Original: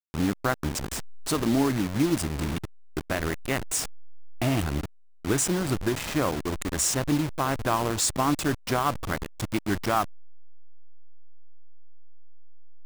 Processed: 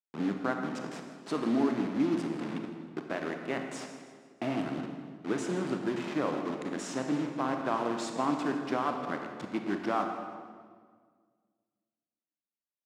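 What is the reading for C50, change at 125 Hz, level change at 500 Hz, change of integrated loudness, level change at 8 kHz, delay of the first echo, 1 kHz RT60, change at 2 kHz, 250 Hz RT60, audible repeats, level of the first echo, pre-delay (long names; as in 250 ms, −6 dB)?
5.0 dB, −13.0 dB, −3.5 dB, −6.0 dB, −19.0 dB, 159 ms, 1.6 s, −6.5 dB, 2.1 s, 1, −17.0 dB, 30 ms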